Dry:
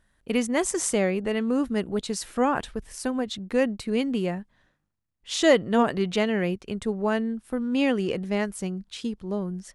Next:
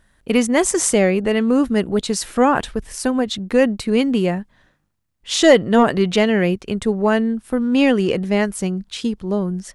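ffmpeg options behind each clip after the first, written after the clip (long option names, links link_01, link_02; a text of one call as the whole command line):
ffmpeg -i in.wav -af "acontrast=83,volume=1.5dB" out.wav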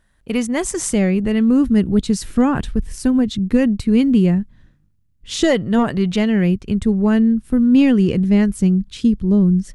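ffmpeg -i in.wav -af "asubboost=boost=11:cutoff=240,volume=-4.5dB" out.wav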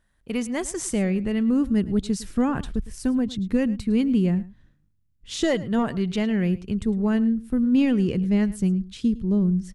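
ffmpeg -i in.wav -af "aecho=1:1:107:0.119,volume=-7dB" out.wav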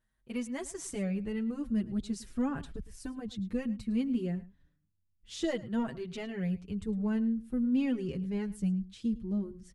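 ffmpeg -i in.wav -filter_complex "[0:a]asplit=2[link_01][link_02];[link_02]adelay=6,afreqshift=0.54[link_03];[link_01][link_03]amix=inputs=2:normalize=1,volume=-8dB" out.wav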